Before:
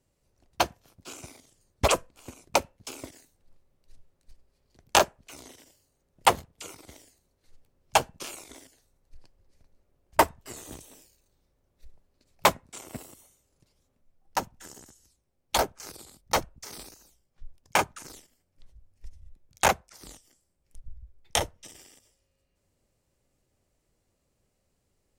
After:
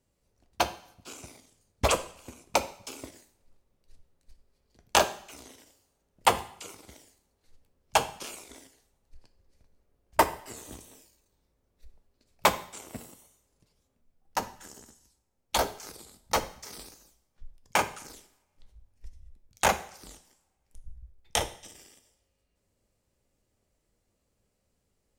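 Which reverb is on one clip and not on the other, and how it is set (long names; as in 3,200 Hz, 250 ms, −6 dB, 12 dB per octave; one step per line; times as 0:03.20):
coupled-rooms reverb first 0.57 s, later 1.8 s, from −26 dB, DRR 9 dB
level −2 dB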